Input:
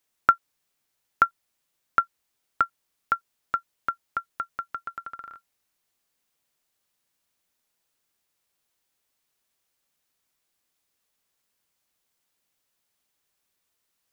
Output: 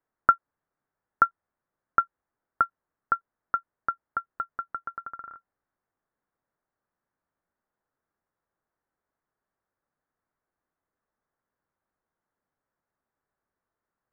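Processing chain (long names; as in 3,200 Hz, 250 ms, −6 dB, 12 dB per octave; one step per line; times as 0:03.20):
Butterworth low-pass 1,700 Hz 36 dB per octave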